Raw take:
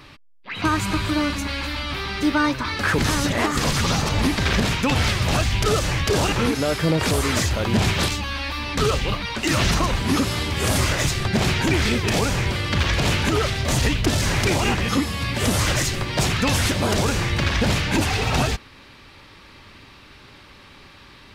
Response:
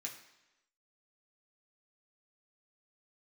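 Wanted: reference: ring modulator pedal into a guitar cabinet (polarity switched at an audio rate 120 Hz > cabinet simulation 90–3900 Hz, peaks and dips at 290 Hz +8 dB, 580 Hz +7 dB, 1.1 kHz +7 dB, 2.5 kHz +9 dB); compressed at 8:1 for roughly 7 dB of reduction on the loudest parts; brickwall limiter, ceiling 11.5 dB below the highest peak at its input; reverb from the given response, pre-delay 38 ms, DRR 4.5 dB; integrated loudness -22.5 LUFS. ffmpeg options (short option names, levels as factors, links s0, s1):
-filter_complex "[0:a]acompressor=threshold=0.0708:ratio=8,alimiter=level_in=1.12:limit=0.0631:level=0:latency=1,volume=0.891,asplit=2[s0][s1];[1:a]atrim=start_sample=2205,adelay=38[s2];[s1][s2]afir=irnorm=-1:irlink=0,volume=0.794[s3];[s0][s3]amix=inputs=2:normalize=0,aeval=exprs='val(0)*sgn(sin(2*PI*120*n/s))':c=same,highpass=90,equalizer=f=290:t=q:w=4:g=8,equalizer=f=580:t=q:w=4:g=7,equalizer=f=1100:t=q:w=4:g=7,equalizer=f=2500:t=q:w=4:g=9,lowpass=f=3900:w=0.5412,lowpass=f=3900:w=1.3066,volume=2.11"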